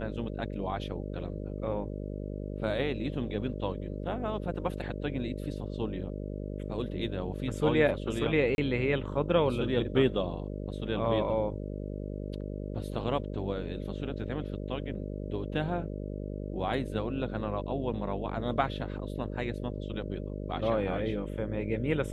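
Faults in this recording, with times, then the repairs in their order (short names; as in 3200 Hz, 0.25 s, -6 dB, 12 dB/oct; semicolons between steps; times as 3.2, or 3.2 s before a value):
buzz 50 Hz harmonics 12 -37 dBFS
8.55–8.58 gap 31 ms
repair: de-hum 50 Hz, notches 12; interpolate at 8.55, 31 ms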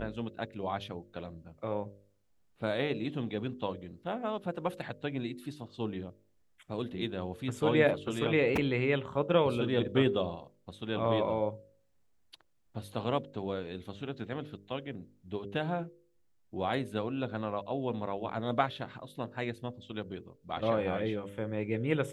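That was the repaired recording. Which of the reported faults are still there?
none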